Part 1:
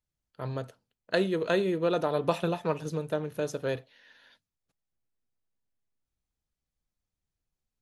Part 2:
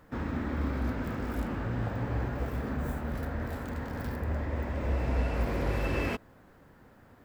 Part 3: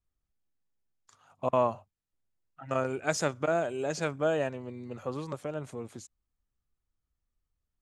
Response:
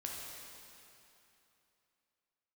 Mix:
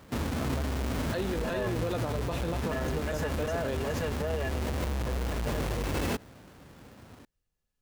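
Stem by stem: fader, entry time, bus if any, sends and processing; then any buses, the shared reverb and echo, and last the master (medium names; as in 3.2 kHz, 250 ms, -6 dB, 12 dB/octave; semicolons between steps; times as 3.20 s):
+1.0 dB, 0.00 s, no send, none
+1.0 dB, 0.00 s, no send, square wave that keeps the level; high-pass 46 Hz 12 dB/octave
-3.5 dB, 0.00 s, no send, comb filter that takes the minimum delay 4.7 ms; small resonant body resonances 510/1700/2800 Hz, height 15 dB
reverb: none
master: peak limiter -23 dBFS, peak gain reduction 13.5 dB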